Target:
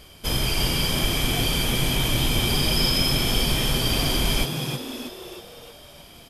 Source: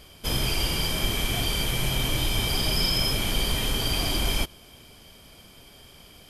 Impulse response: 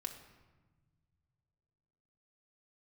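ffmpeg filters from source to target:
-filter_complex "[0:a]asplit=7[s0][s1][s2][s3][s4][s5][s6];[s1]adelay=316,afreqshift=110,volume=0.447[s7];[s2]adelay=632,afreqshift=220,volume=0.229[s8];[s3]adelay=948,afreqshift=330,volume=0.116[s9];[s4]adelay=1264,afreqshift=440,volume=0.0596[s10];[s5]adelay=1580,afreqshift=550,volume=0.0302[s11];[s6]adelay=1896,afreqshift=660,volume=0.0155[s12];[s0][s7][s8][s9][s10][s11][s12]amix=inputs=7:normalize=0,volume=1.26"

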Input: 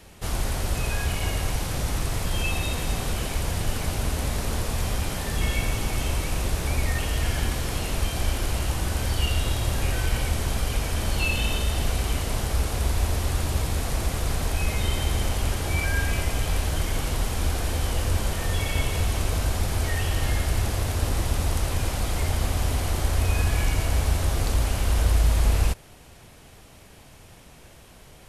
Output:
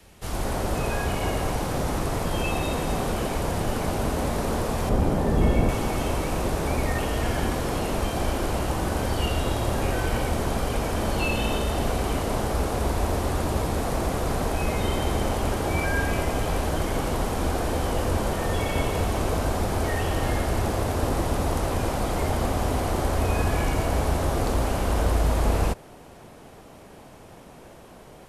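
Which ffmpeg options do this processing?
-filter_complex "[0:a]asettb=1/sr,asplit=3[s0][s1][s2];[s0]atrim=end=4.894[s3];[s1]atrim=start=4.89:end=5.69,asetpts=PTS-STARTPTS,afade=t=in:d=0.004:c=qsin,afade=t=out:st=0.796:d=0.004:c=qsin,tiltshelf=f=910:g=6.5[s4];[s2]atrim=start=5.686[s5];[s3][s4]acrossfade=d=0.004:c1=hsin:c2=qsin[s6];[s6][s5]acrossfade=d=0.004:c1=qsin:c2=hsin,acrossover=split=170|1300|4500[s7][s8][s9][s10];[s8]dynaudnorm=f=250:g=3:m=3.55[s11];[s7][s11][s9][s10]amix=inputs=4:normalize=0,volume=0.668"

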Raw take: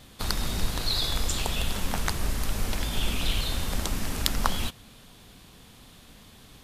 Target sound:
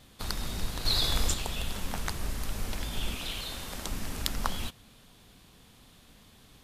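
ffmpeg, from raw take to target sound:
-filter_complex "[0:a]asettb=1/sr,asplit=3[s0][s1][s2];[s0]atrim=end=0.854[s3];[s1]atrim=start=0.85:end=1.34,asetpts=PTS-STARTPTS,afade=t=in:d=0.004:c=qsin,afade=t=out:st=0.486:d=0.004:c=qsin,acontrast=42[s4];[s2]atrim=start=1.336[s5];[s3][s4]acrossfade=d=0.004:c1=hsin:c2=qsin[s6];[s6][s5]acrossfade=d=0.004:c1=qsin:c2=hsin,asettb=1/sr,asplit=3[s7][s8][s9];[s7]atrim=end=3.144[s10];[s8]atrim=start=3.14:end=3.86,asetpts=PTS-STARTPTS,afade=t=in:d=0.004:c=qsin,afade=t=out:st=0.716:d=0.004:c=qsin,lowshelf=f=180:g=-9[s11];[s9]atrim=start=3.856[s12];[s10][s11]acrossfade=d=0.004:c1=hsin:c2=qsin[s13];[s13][s12]acrossfade=d=0.004:c1=qsin:c2=hsin,volume=0.531"

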